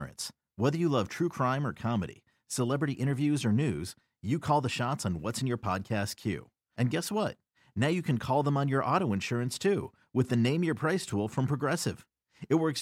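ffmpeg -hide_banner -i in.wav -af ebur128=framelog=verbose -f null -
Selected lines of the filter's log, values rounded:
Integrated loudness:
  I:         -30.5 LUFS
  Threshold: -40.9 LUFS
Loudness range:
  LRA:         3.1 LU
  Threshold: -50.8 LUFS
  LRA low:   -32.4 LUFS
  LRA high:  -29.3 LUFS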